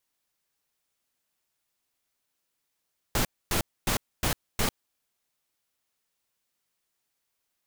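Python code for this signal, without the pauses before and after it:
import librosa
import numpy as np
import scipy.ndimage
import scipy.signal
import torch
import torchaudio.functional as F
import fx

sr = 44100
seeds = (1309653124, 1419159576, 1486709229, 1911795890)

y = fx.noise_burst(sr, seeds[0], colour='pink', on_s=0.1, off_s=0.26, bursts=5, level_db=-25.5)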